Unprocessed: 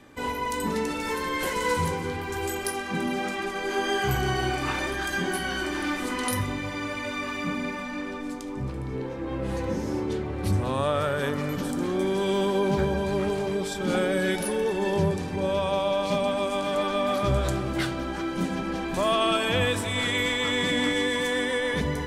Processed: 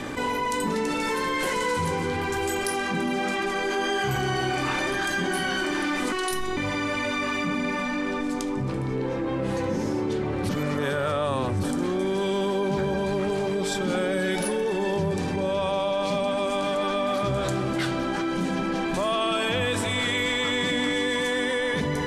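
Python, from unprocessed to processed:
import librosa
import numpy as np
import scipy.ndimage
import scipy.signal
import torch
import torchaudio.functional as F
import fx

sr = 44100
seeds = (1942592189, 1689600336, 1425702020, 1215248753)

y = fx.robotise(x, sr, hz=371.0, at=(6.12, 6.57))
y = fx.edit(y, sr, fx.reverse_span(start_s=10.49, length_s=1.14), tone=tone)
y = scipy.signal.sosfilt(scipy.signal.butter(2, 11000.0, 'lowpass', fs=sr, output='sos'), y)
y = fx.peak_eq(y, sr, hz=67.0, db=-14.0, octaves=0.41)
y = fx.env_flatten(y, sr, amount_pct=70)
y = F.gain(torch.from_numpy(y), -2.5).numpy()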